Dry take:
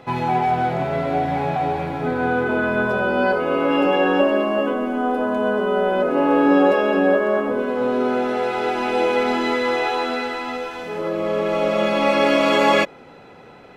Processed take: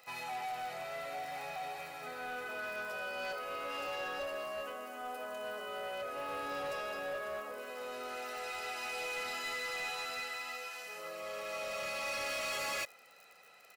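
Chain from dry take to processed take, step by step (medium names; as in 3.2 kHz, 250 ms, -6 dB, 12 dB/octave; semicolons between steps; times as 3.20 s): crackle 32 per s -42 dBFS; differentiator; band-stop 3.4 kHz, Q 7.8; comb 1.6 ms, depth 48%; saturation -34 dBFS, distortion -12 dB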